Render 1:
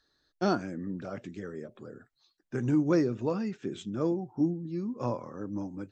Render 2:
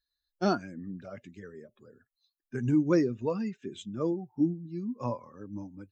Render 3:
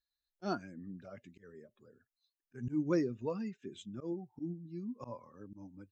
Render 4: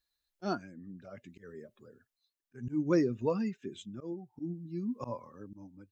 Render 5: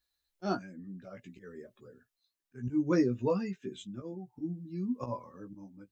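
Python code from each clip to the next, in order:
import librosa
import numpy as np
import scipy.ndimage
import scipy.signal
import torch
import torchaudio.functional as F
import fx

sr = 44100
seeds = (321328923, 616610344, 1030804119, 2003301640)

y1 = fx.bin_expand(x, sr, power=1.5)
y1 = y1 * librosa.db_to_amplitude(2.0)
y2 = fx.auto_swell(y1, sr, attack_ms=119.0)
y2 = y2 * librosa.db_to_amplitude(-6.5)
y3 = y2 * (1.0 - 0.58 / 2.0 + 0.58 / 2.0 * np.cos(2.0 * np.pi * 0.6 * (np.arange(len(y2)) / sr)))
y3 = y3 * librosa.db_to_amplitude(6.5)
y4 = fx.doubler(y3, sr, ms=16.0, db=-5)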